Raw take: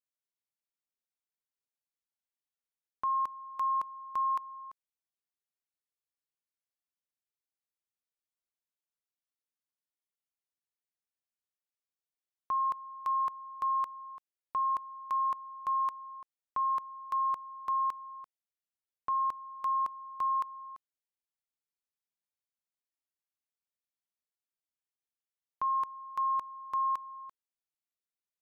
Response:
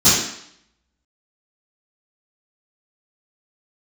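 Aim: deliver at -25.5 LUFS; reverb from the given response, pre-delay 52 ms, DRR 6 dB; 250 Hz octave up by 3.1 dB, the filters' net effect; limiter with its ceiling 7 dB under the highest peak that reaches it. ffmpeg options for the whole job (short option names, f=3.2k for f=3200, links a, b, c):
-filter_complex "[0:a]equalizer=f=250:t=o:g=4,alimiter=level_in=8.5dB:limit=-24dB:level=0:latency=1,volume=-8.5dB,asplit=2[a][b];[1:a]atrim=start_sample=2205,adelay=52[c];[b][c]afir=irnorm=-1:irlink=0,volume=-28dB[d];[a][d]amix=inputs=2:normalize=0,volume=16dB"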